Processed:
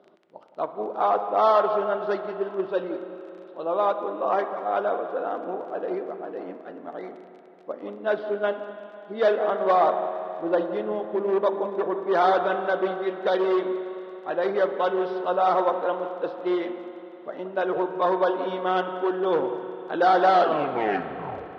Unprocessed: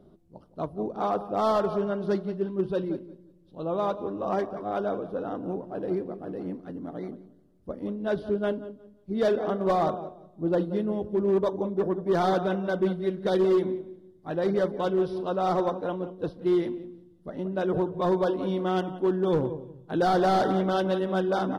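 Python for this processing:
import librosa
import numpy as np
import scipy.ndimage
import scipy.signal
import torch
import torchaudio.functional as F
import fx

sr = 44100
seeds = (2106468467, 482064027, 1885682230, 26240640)

y = fx.tape_stop_end(x, sr, length_s=1.26)
y = fx.dmg_crackle(y, sr, seeds[0], per_s=18.0, level_db=-43.0)
y = fx.bandpass_edges(y, sr, low_hz=560.0, high_hz=3000.0)
y = fx.rev_spring(y, sr, rt60_s=3.6, pass_ms=(33, 54), chirp_ms=65, drr_db=8.5)
y = F.gain(torch.from_numpy(y), 7.0).numpy()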